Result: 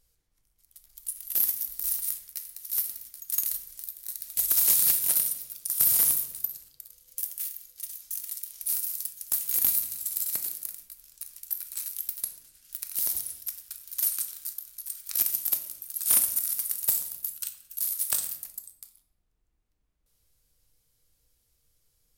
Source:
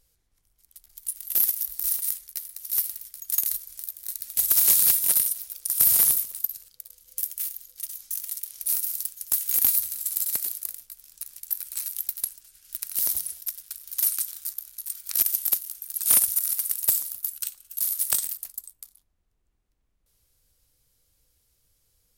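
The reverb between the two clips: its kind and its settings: shoebox room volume 290 m³, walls mixed, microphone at 0.48 m; gain -3.5 dB

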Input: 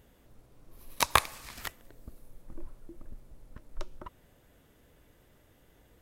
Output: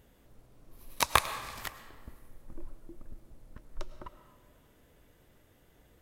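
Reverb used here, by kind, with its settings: digital reverb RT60 1.7 s, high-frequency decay 0.65×, pre-delay 65 ms, DRR 11 dB; gain -1 dB

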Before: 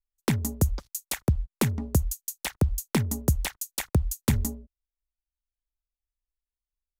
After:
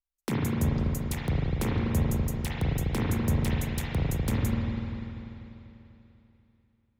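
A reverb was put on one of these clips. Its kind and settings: spring tank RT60 3.2 s, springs 35/49 ms, chirp 35 ms, DRR -7 dB; gain -8 dB

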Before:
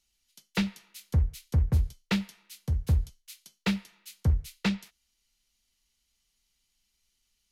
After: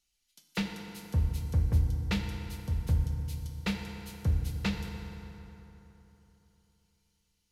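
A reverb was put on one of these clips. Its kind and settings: FDN reverb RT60 3.5 s, high-frequency decay 0.6×, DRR 3 dB; gain -4 dB

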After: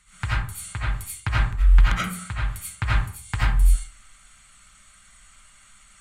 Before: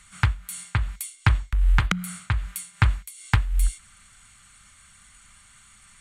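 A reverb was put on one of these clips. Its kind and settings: digital reverb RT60 0.48 s, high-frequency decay 0.55×, pre-delay 45 ms, DRR -9 dB; gain -8.5 dB

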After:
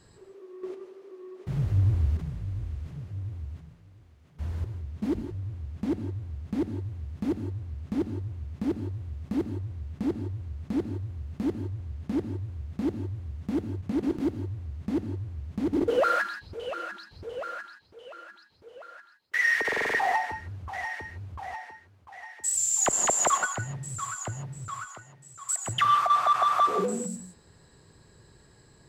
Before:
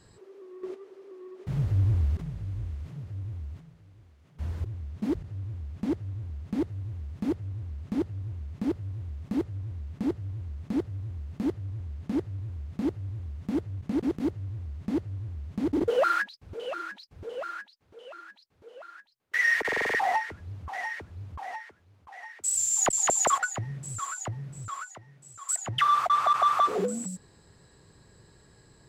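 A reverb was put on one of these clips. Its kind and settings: non-linear reverb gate 0.19 s rising, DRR 9 dB

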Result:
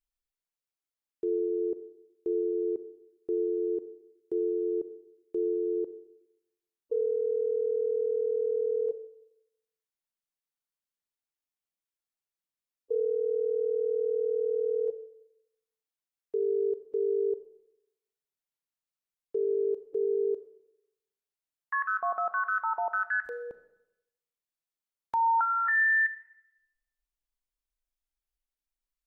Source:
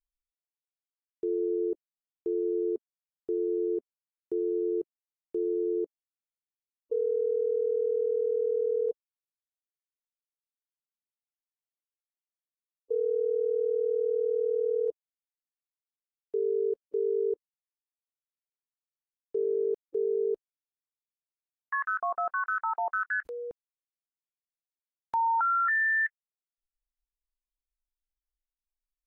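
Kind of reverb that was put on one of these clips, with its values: Schroeder reverb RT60 0.87 s, combs from 28 ms, DRR 11 dB

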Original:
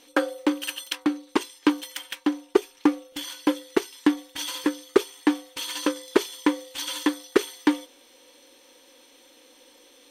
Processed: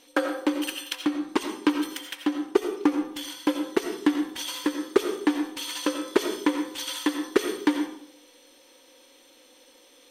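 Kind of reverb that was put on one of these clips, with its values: digital reverb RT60 0.66 s, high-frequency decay 0.5×, pre-delay 45 ms, DRR 5 dB; gain -2 dB

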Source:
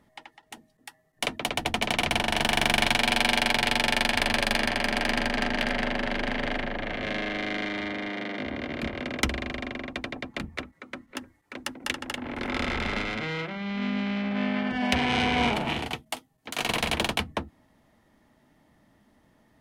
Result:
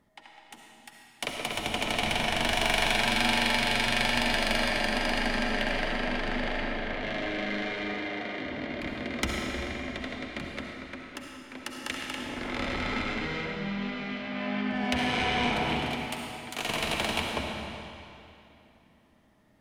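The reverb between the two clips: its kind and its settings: digital reverb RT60 2.8 s, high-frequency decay 0.9×, pre-delay 25 ms, DRR -0.5 dB; gain -5 dB

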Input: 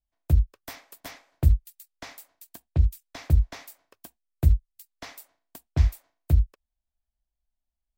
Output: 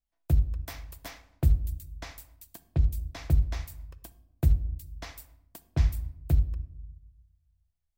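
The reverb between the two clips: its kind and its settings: shoebox room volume 2500 m³, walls furnished, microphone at 0.73 m; gain -2 dB

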